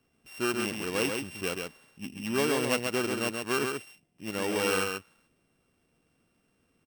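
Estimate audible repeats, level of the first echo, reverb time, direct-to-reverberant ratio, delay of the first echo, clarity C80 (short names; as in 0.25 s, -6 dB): 1, -4.5 dB, none, none, 0.134 s, none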